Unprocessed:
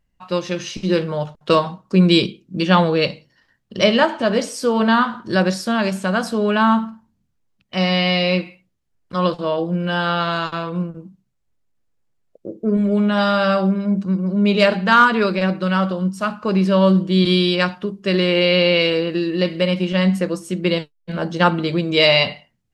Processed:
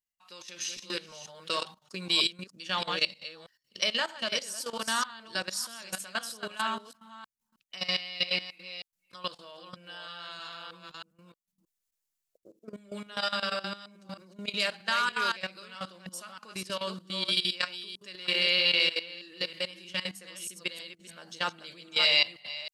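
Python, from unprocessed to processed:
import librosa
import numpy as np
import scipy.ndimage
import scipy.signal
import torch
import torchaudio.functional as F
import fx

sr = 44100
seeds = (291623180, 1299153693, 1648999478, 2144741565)

y = fx.reverse_delay(x, sr, ms=315, wet_db=-5.0)
y = fx.level_steps(y, sr, step_db=16)
y = scipy.signal.lfilter([1.0, -0.97], [1.0], y)
y = F.gain(torch.from_numpy(y), 4.0).numpy()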